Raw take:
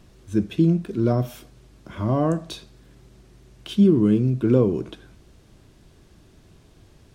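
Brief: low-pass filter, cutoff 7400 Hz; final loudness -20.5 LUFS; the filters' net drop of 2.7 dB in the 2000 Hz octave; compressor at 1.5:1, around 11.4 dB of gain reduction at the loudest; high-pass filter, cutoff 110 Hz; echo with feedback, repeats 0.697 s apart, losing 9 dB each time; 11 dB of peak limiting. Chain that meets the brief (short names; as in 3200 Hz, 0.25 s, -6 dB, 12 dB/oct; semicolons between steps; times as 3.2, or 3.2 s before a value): HPF 110 Hz; LPF 7400 Hz; bell 2000 Hz -4 dB; compressor 1.5:1, threshold -45 dBFS; limiter -28.5 dBFS; feedback echo 0.697 s, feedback 35%, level -9 dB; gain +19 dB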